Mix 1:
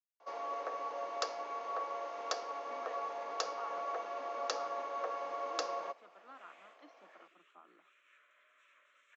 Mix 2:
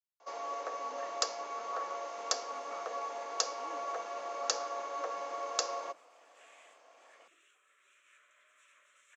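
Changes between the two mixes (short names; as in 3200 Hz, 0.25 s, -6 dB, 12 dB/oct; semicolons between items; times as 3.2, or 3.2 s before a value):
speech: entry -1.85 s; master: remove air absorption 160 m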